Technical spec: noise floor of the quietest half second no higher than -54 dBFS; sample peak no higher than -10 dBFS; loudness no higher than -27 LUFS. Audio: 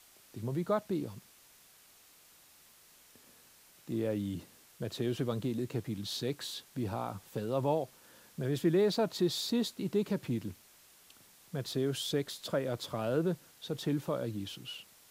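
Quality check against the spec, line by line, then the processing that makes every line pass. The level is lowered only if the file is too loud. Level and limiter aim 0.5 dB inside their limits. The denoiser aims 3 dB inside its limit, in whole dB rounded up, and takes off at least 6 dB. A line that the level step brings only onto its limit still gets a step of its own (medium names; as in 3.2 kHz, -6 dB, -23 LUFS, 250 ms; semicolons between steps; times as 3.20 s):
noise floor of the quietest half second -61 dBFS: pass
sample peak -17.5 dBFS: pass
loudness -35.0 LUFS: pass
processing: none needed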